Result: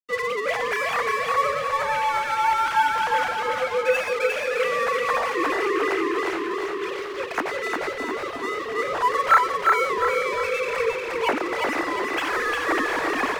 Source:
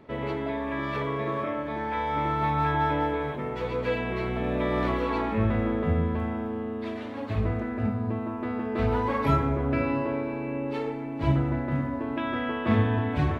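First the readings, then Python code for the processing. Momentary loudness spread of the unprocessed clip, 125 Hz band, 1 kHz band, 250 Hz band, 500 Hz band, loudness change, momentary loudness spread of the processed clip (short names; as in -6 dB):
7 LU, -22.0 dB, +8.0 dB, -5.5 dB, +5.0 dB, +5.0 dB, 7 LU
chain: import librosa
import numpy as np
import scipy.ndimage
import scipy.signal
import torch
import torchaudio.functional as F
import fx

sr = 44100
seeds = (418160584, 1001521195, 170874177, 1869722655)

y = fx.sine_speech(x, sr)
y = fx.highpass(y, sr, hz=690.0, slope=6)
y = fx.high_shelf(y, sr, hz=2200.0, db=9.5)
y = fx.rider(y, sr, range_db=4, speed_s=0.5)
y = np.sign(y) * np.maximum(np.abs(y) - 10.0 ** (-38.5 / 20.0), 0.0)
y = fx.echo_feedback(y, sr, ms=354, feedback_pct=45, wet_db=-3)
y = y * 10.0 ** (5.5 / 20.0)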